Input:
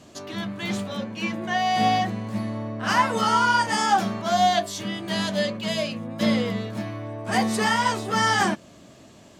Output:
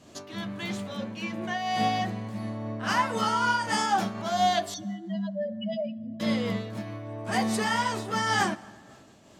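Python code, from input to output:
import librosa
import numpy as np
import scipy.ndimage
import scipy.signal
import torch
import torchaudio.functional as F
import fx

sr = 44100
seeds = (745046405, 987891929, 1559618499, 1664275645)

y = fx.spec_expand(x, sr, power=3.3, at=(4.74, 6.2))
y = fx.rev_plate(y, sr, seeds[0], rt60_s=2.1, hf_ratio=0.6, predelay_ms=0, drr_db=18.5)
y = fx.am_noise(y, sr, seeds[1], hz=5.7, depth_pct=60)
y = y * librosa.db_to_amplitude(-1.5)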